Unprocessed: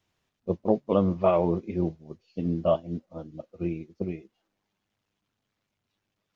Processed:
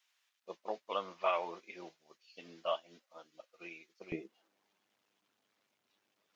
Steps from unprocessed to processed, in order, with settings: HPF 1500 Hz 12 dB/oct, from 4.12 s 310 Hz; gain +3 dB

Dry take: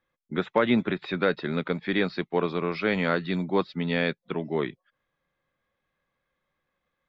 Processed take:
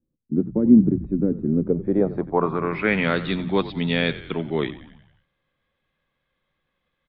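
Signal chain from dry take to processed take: low shelf 300 Hz +7 dB; notches 60/120/180 Hz; low-pass sweep 280 Hz -> 3400 Hz, 1.47–3.17; frequency-shifting echo 90 ms, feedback 57%, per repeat -52 Hz, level -15 dB

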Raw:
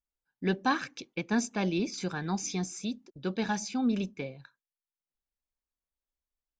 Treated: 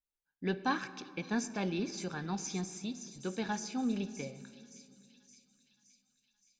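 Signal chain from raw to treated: thin delay 0.569 s, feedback 58%, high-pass 5300 Hz, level -6 dB; on a send at -12 dB: reverb RT60 2.1 s, pre-delay 6 ms; on the sum: gain -5 dB

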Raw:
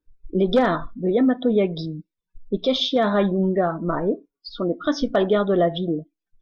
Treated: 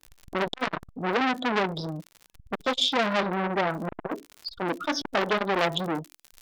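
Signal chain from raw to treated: crackle 75/s -35 dBFS; high shelf 2800 Hz +3 dB, from 5.43 s +9 dB; core saturation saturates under 2200 Hz

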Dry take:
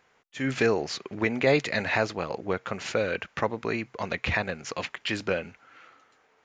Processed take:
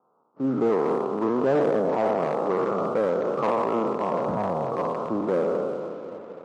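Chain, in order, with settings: spectral trails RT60 2.21 s; steep low-pass 1300 Hz 96 dB/oct; on a send: swung echo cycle 0.998 s, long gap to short 3:1, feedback 34%, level -18 dB; on the sum: sample leveller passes 1; in parallel at +2 dB: limiter -16.5 dBFS, peak gain reduction 7 dB; on the sum: one-sided clip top -13 dBFS, bottom -6.5 dBFS; HPF 160 Hz 24 dB/oct; gain -6.5 dB; MP3 40 kbps 32000 Hz

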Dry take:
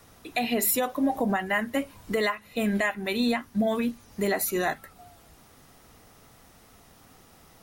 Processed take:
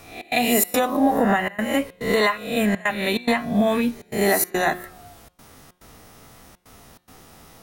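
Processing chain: spectral swells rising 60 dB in 0.61 s; step gate "xx.xxx.xxxxx" 142 bpm -24 dB; de-hum 179.5 Hz, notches 26; gain +5 dB

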